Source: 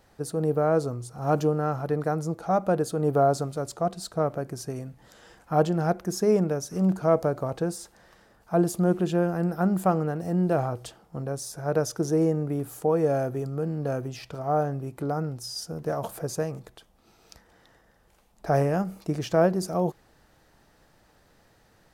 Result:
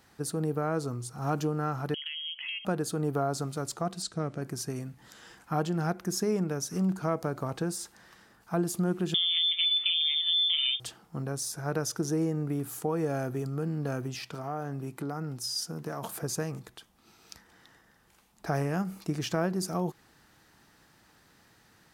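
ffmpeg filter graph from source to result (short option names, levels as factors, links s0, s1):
-filter_complex "[0:a]asettb=1/sr,asplit=3[s0][s1][s2];[s0]atrim=end=1.944[s3];[s1]atrim=start=1.94:end=2.65,asetpts=PTS-STARTPTS,afade=t=in:d=0.004:c=qsin,afade=t=out:st=0.706:d=0.004:c=qsin,lowpass=f=2900:t=q:w=0.5098,lowpass=f=2900:t=q:w=0.6013,lowpass=f=2900:t=q:w=0.9,lowpass=f=2900:t=q:w=2.563,afreqshift=-3400,acompressor=threshold=0.0158:ratio=10:attack=3.2:release=140:knee=1:detection=peak[s4];[s2]atrim=start=2.646[s5];[s3][s4]acrossfade=d=0.004:c1=hsin:c2=qsin[s6];[s6][s5]acrossfade=d=0.004:c1=qsin:c2=hsin,asettb=1/sr,asplit=3[s7][s8][s9];[s7]atrim=end=4.024[s10];[s8]atrim=start=4.02:end=4.42,asetpts=PTS-STARTPTS,afade=t=in:d=0.004:c=qsin,afade=t=out:st=0.396:d=0.004:c=qsin,lowpass=f=9100:w=0.5412,lowpass=f=9100:w=1.3066,equalizer=f=960:t=o:w=1.3:g=-9[s11];[s9]atrim=start=4.416[s12];[s10][s11]acrossfade=d=0.004:c1=hsin:c2=qsin[s13];[s13][s12]acrossfade=d=0.004:c1=qsin:c2=hsin,asettb=1/sr,asplit=3[s14][s15][s16];[s14]atrim=end=9.144[s17];[s15]atrim=start=9.14:end=10.8,asetpts=PTS-STARTPTS,afade=t=in:d=0.004:c=qsin,afade=t=out:st=1.656:d=0.004:c=qsin,aecho=1:1:6.1:0.79,atrim=end_sample=73206,acompressor=threshold=0.1:ratio=6:attack=3.2:release=140:knee=1:detection=peak,lowpass=f=3100:t=q:w=0.5098,lowpass=f=3100:t=q:w=0.6013,lowpass=f=3100:t=q:w=0.9,lowpass=f=3100:t=q:w=2.563,afreqshift=-3700[s18];[s16]atrim=start=10.796[s19];[s17][s18]acrossfade=d=0.004:c1=hsin:c2=qsin[s20];[s20][s19]acrossfade=d=0.004:c1=qsin:c2=hsin,asettb=1/sr,asplit=3[s21][s22][s23];[s21]atrim=end=14.154[s24];[s22]atrim=start=14.15:end=16.23,asetpts=PTS-STARTPTS,afade=t=in:d=0.004:c=qsin,afade=t=out:st=2.076:d=0.004:c=qsin,highpass=120,acompressor=threshold=0.0355:ratio=2.5:attack=3.2:release=140:knee=1:detection=peak[s25];[s23]atrim=start=16.226[s26];[s24][s25]acrossfade=d=0.004:c1=hsin:c2=qsin[s27];[s27][s26]acrossfade=d=0.004:c1=qsin:c2=hsin,highpass=f=160:p=1,equalizer=f=570:t=o:w=1:g=-10,acompressor=threshold=0.0282:ratio=2,volume=1.41"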